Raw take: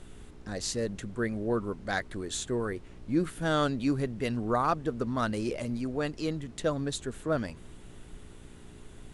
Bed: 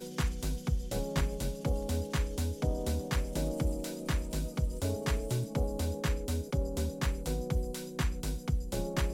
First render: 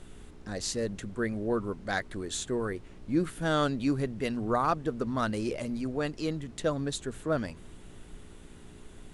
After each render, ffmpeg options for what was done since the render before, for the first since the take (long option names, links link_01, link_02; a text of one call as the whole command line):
ffmpeg -i in.wav -af "bandreject=frequency=60:width_type=h:width=4,bandreject=frequency=120:width_type=h:width=4" out.wav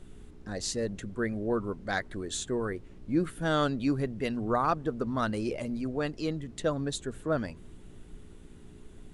ffmpeg -i in.wav -af "afftdn=noise_reduction=6:noise_floor=-50" out.wav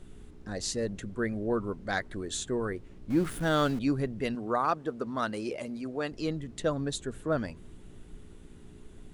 ffmpeg -i in.wav -filter_complex "[0:a]asettb=1/sr,asplit=3[link_01][link_02][link_03];[link_01]atrim=end=3.104[link_04];[link_02]atrim=start=3.1:end=3.79,asetpts=PTS-STARTPTS,afade=type=in:duration=0.004:curve=qsin,afade=type=out:start_time=0.686:duration=0.004:curve=qsin,aeval=exprs='val(0)+0.5*0.0126*sgn(val(0))':channel_layout=same[link_05];[link_03]atrim=start=3.786[link_06];[link_04][link_05]acrossfade=duration=0.004:curve1=hsin:curve2=qsin[link_07];[link_07][link_06]acrossfade=duration=0.004:curve1=qsin:curve2=hsin,asettb=1/sr,asplit=3[link_08][link_09][link_10];[link_08]atrim=end=4.354[link_11];[link_09]atrim=start=4.35:end=6.12,asetpts=PTS-STARTPTS,afade=type=in:duration=0.004:curve=qsin,afade=type=out:start_time=1.766:duration=0.004:curve=qsin,highpass=frequency=290:poles=1[link_12];[link_10]atrim=start=6.116[link_13];[link_11][link_12]acrossfade=duration=0.004:curve1=hsin:curve2=qsin[link_14];[link_14][link_13]acrossfade=duration=0.004:curve1=qsin:curve2=hsin" out.wav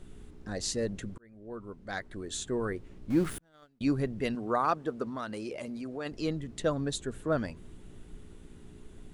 ffmpeg -i in.wav -filter_complex "[0:a]asettb=1/sr,asplit=3[link_01][link_02][link_03];[link_01]atrim=end=3.384[link_04];[link_02]atrim=start=3.38:end=3.81,asetpts=PTS-STARTPTS,afade=type=in:duration=0.004:curve=qsin,afade=type=out:start_time=0.426:duration=0.004:curve=qsin,agate=range=-39dB:threshold=-21dB:ratio=16:release=100:detection=peak[link_05];[link_03]atrim=start=3.806[link_06];[link_04][link_05]acrossfade=duration=0.004:curve1=hsin:curve2=qsin[link_07];[link_07][link_06]acrossfade=duration=0.004:curve1=qsin:curve2=hsin,asplit=3[link_08][link_09][link_10];[link_08]afade=type=out:start_time=5.08:duration=0.02[link_11];[link_09]acompressor=threshold=-35dB:ratio=2.5:attack=3.2:release=140:knee=1:detection=peak,afade=type=in:start_time=5.08:duration=0.02,afade=type=out:start_time=6.05:duration=0.02[link_12];[link_10]afade=type=in:start_time=6.05:duration=0.02[link_13];[link_11][link_12][link_13]amix=inputs=3:normalize=0,asplit=2[link_14][link_15];[link_14]atrim=end=1.18,asetpts=PTS-STARTPTS,afade=type=out:start_time=1.176:duration=0.004:curve=hsin[link_16];[link_15]atrim=start=1.18,asetpts=PTS-STARTPTS,afade=type=in:duration=1.52[link_17];[link_16][link_17]concat=n=2:v=0:a=1" out.wav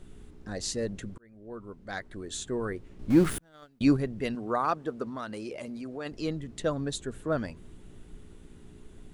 ffmpeg -i in.wav -filter_complex "[0:a]asettb=1/sr,asplit=3[link_01][link_02][link_03];[link_01]atrim=end=2.994[link_04];[link_02]atrim=start=2.99:end=3.97,asetpts=PTS-STARTPTS,afade=type=in:duration=0.004:curve=qsin,afade=type=out:start_time=0.976:duration=0.004:curve=qsin,acontrast=49[link_05];[link_03]atrim=start=3.966[link_06];[link_04][link_05]acrossfade=duration=0.004:curve1=hsin:curve2=qsin[link_07];[link_07][link_06]acrossfade=duration=0.004:curve1=qsin:curve2=hsin" out.wav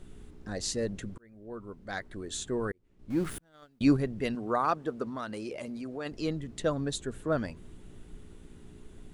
ffmpeg -i in.wav -filter_complex "[0:a]asplit=2[link_01][link_02];[link_01]atrim=end=2.72,asetpts=PTS-STARTPTS,afade=type=out:start_time=2.716:duration=0.004:curve=hsin[link_03];[link_02]atrim=start=2.72,asetpts=PTS-STARTPTS,afade=type=in:duration=1.27[link_04];[link_03][link_04]concat=n=2:v=0:a=1" out.wav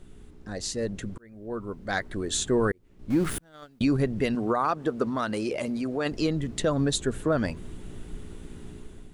ffmpeg -i in.wav -af "dynaudnorm=framelen=790:gausssize=3:maxgain=9dB,alimiter=limit=-15dB:level=0:latency=1:release=125" out.wav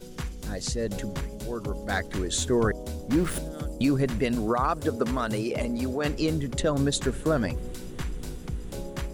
ffmpeg -i in.wav -i bed.wav -filter_complex "[1:a]volume=-2.5dB[link_01];[0:a][link_01]amix=inputs=2:normalize=0" out.wav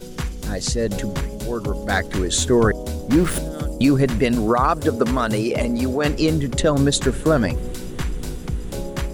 ffmpeg -i in.wav -af "volume=7.5dB" out.wav